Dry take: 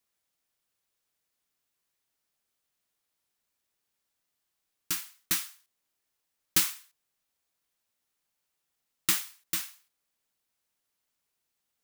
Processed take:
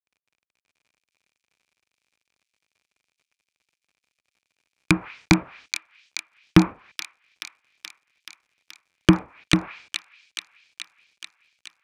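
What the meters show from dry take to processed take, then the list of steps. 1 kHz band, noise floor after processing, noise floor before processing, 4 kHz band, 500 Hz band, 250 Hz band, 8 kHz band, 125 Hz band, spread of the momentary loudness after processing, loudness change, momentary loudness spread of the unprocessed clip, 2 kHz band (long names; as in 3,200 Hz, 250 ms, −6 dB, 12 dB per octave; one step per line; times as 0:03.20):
+14.5 dB, below −85 dBFS, −82 dBFS, +5.5 dB, +25.0 dB, +26.5 dB, −3.0 dB, +26.5 dB, 23 LU, +5.0 dB, 14 LU, +11.5 dB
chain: mu-law and A-law mismatch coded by A
treble cut that deepens with the level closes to 1,100 Hz, closed at −32 dBFS
high-pass filter 50 Hz
treble cut that deepens with the level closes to 540 Hz, closed at −42.5 dBFS
parametric band 2,400 Hz +12.5 dB 0.24 octaves
wave folding −28 dBFS
high-frequency loss of the air 72 metres
delay with a high-pass on its return 428 ms, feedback 68%, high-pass 3,300 Hz, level −4.5 dB
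boost into a limiter +32 dB
buffer that repeats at 0:03.26/0:08.90, samples 512, times 3
level −1 dB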